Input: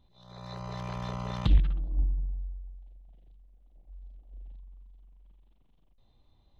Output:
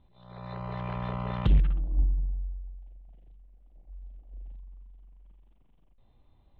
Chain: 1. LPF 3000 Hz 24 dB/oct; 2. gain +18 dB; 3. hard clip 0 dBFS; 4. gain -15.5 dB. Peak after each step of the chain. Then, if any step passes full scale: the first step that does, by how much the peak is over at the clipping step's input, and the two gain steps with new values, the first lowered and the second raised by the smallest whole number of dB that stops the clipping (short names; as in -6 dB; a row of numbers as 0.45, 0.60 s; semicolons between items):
-10.5, +7.5, 0.0, -15.5 dBFS; step 2, 7.5 dB; step 2 +10 dB, step 4 -7.5 dB